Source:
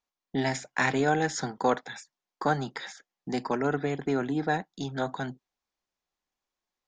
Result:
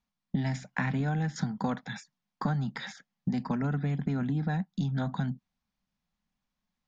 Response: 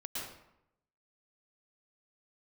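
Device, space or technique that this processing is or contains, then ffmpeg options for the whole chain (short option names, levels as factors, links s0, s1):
jukebox: -filter_complex "[0:a]lowpass=5600,lowshelf=f=270:t=q:w=3:g=10,acompressor=threshold=0.0398:ratio=6,asettb=1/sr,asplit=3[s0][s1][s2];[s0]atrim=end=0.714[s3];[s1]atrim=start=0.71:end=1.36,asetpts=PTS-STARTPTS,afade=t=in:d=0.004:c=qsin,afade=t=out:st=0.646:d=0.004:c=qsin,acrossover=split=3000[s4][s5];[s5]acompressor=threshold=0.002:ratio=4:attack=1:release=60[s6];[s4][s6]amix=inputs=2:normalize=0[s7];[s2]atrim=start=1.356[s8];[s3][s7]acrossfade=d=0.004:c1=hsin:c2=qsin[s9];[s9][s8]acrossfade=d=0.004:c1=qsin:c2=hsin,volume=1.12"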